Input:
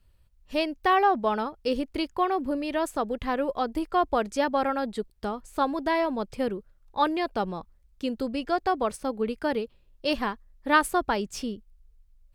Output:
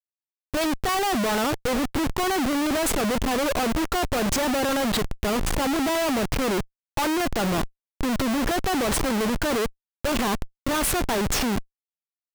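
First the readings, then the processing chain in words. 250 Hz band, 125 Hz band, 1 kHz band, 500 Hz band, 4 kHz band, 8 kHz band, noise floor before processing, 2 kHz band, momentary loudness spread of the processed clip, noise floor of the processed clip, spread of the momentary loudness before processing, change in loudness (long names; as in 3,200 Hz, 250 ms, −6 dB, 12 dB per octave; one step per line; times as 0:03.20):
+5.0 dB, +13.5 dB, −0.5 dB, +2.0 dB, +8.0 dB, +15.5 dB, −61 dBFS, +3.5 dB, 5 LU, below −85 dBFS, 10 LU, +3.0 dB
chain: transient designer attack −6 dB, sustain +11 dB
comparator with hysteresis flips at −37 dBFS
level +4.5 dB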